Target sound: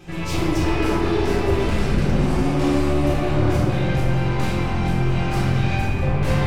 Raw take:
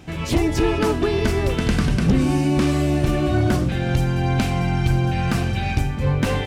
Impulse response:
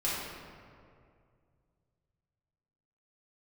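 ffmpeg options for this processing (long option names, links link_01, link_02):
-filter_complex "[0:a]aeval=exprs='(tanh(15.8*val(0)+0.25)-tanh(0.25))/15.8':channel_layout=same[link_01];[1:a]atrim=start_sample=2205[link_02];[link_01][link_02]afir=irnorm=-1:irlink=0,volume=-2.5dB"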